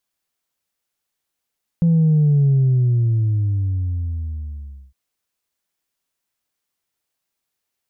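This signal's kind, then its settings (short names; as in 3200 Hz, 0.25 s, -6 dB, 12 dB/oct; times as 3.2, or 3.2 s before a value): sub drop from 170 Hz, over 3.11 s, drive 0.5 dB, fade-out 2.47 s, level -12 dB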